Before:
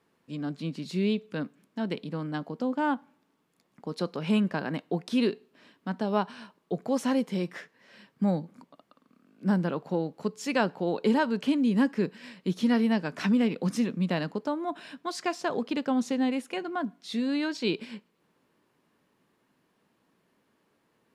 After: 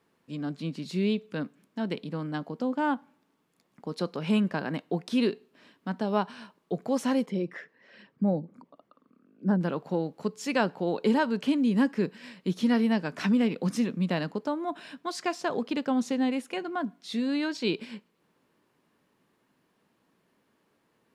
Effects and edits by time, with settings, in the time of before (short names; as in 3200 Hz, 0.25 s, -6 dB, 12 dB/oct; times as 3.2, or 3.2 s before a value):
7.26–9.61 formant sharpening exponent 1.5